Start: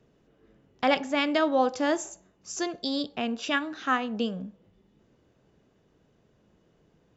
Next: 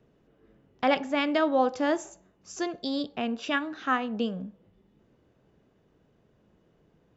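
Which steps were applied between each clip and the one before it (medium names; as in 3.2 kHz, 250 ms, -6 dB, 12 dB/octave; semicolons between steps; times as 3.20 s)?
treble shelf 4.8 kHz -9.5 dB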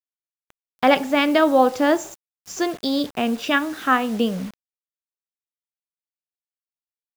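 word length cut 8-bit, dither none; trim +8 dB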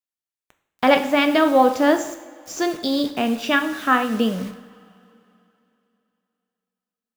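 two-slope reverb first 0.66 s, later 3 s, from -18 dB, DRR 7 dB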